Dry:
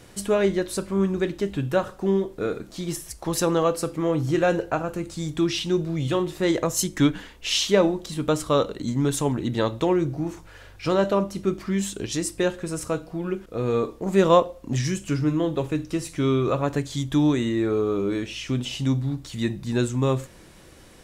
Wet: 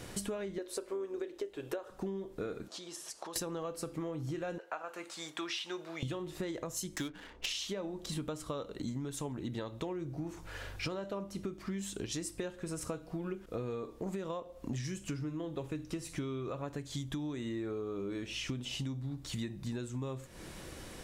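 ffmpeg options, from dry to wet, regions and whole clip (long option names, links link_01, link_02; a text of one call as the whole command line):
ffmpeg -i in.wav -filter_complex "[0:a]asettb=1/sr,asplit=3[link_01][link_02][link_03];[link_01]atrim=end=0.584[link_04];[link_02]atrim=start=0.58:end=1.9,asetpts=PTS-STARTPTS,afade=type=in:duration=0.004:curve=qsin,afade=type=out:start_time=1.316:duration=0.004:curve=qsin,lowshelf=frequency=280:width_type=q:width=3:gain=-12.5,tremolo=f=110:d=0.261[link_05];[link_03]atrim=start=1.896[link_06];[link_04][link_05]acrossfade=duration=0.004:curve1=hsin:curve2=qsin[link_07];[link_07][link_06]acrossfade=duration=0.004:curve1=qsin:curve2=hsin,asettb=1/sr,asplit=3[link_08][link_09][link_10];[link_08]atrim=end=2.684[link_11];[link_09]atrim=start=2.68:end=3.36,asetpts=PTS-STARTPTS,afade=type=in:duration=0.004:curve=qsin,afade=type=out:start_time=0.676:duration=0.004:curve=qsin,equalizer=frequency=2100:width=3.2:gain=-6.5,acompressor=threshold=-39dB:ratio=4:attack=3.2:release=140:knee=1:detection=peak,highpass=490,lowpass=7500[link_12];[link_10]atrim=start=3.356[link_13];[link_11][link_12]acrossfade=duration=0.004:curve1=hsin:curve2=qsin[link_14];[link_14][link_13]acrossfade=duration=0.004:curve1=qsin:curve2=hsin,asettb=1/sr,asplit=3[link_15][link_16][link_17];[link_15]atrim=end=4.584[link_18];[link_16]atrim=start=4.58:end=6.03,asetpts=PTS-STARTPTS,afade=type=in:duration=0.004:curve=qsin,afade=type=out:start_time=1.446:duration=0.004:curve=qsin,highpass=870,highshelf=frequency=3800:gain=-10.5[link_19];[link_17]atrim=start=6.026[link_20];[link_18][link_19]acrossfade=duration=0.004:curve1=hsin:curve2=qsin[link_21];[link_21][link_20]acrossfade=duration=0.004:curve1=qsin:curve2=hsin,asettb=1/sr,asplit=3[link_22][link_23][link_24];[link_22]atrim=end=6.964[link_25];[link_23]atrim=start=6.96:end=7.46,asetpts=PTS-STARTPTS,afade=type=in:duration=0.004:curve=qsin,afade=type=out:start_time=0.496:duration=0.004:curve=qsin,bass=frequency=250:gain=-7,treble=frequency=4000:gain=13,adynamicsmooth=sensitivity=8:basefreq=1100[link_26];[link_24]atrim=start=7.456[link_27];[link_25][link_26]acrossfade=duration=0.004:curve1=hsin:curve2=qsin[link_28];[link_28][link_27]acrossfade=duration=0.004:curve1=qsin:curve2=hsin,alimiter=limit=-15dB:level=0:latency=1:release=407,acompressor=threshold=-37dB:ratio=16,volume=2dB" out.wav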